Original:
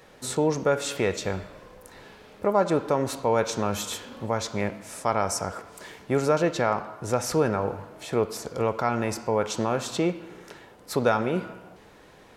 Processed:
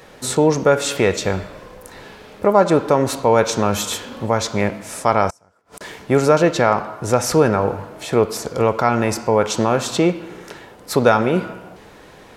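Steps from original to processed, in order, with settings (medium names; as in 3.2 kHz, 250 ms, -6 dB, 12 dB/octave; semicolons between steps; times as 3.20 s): 5.30–5.81 s: inverted gate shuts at -29 dBFS, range -33 dB; trim +8.5 dB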